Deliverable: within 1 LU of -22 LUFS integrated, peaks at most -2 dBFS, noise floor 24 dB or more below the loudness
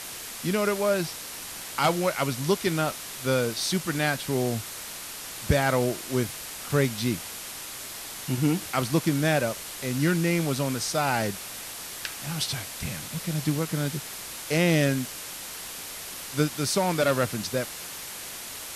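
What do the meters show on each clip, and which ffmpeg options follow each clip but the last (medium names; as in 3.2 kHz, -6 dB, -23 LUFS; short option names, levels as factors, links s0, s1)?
noise floor -39 dBFS; noise floor target -52 dBFS; loudness -27.5 LUFS; peak level -8.5 dBFS; loudness target -22.0 LUFS
-> -af "afftdn=nr=13:nf=-39"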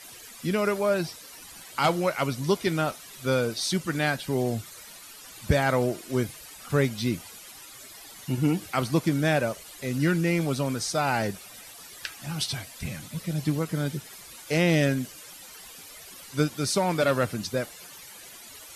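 noise floor -46 dBFS; noise floor target -51 dBFS
-> -af "afftdn=nr=6:nf=-46"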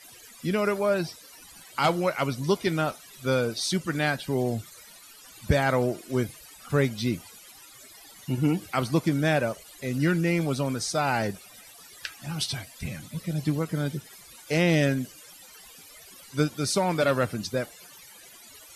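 noise floor -50 dBFS; noise floor target -51 dBFS
-> -af "afftdn=nr=6:nf=-50"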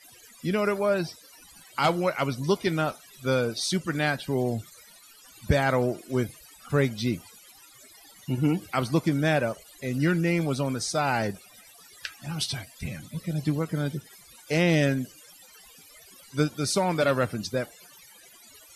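noise floor -53 dBFS; loudness -27.0 LUFS; peak level -9.5 dBFS; loudness target -22.0 LUFS
-> -af "volume=1.78"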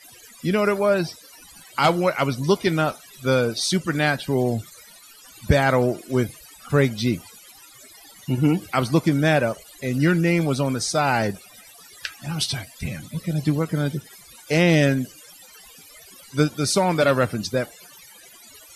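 loudness -22.0 LUFS; peak level -4.0 dBFS; noise floor -48 dBFS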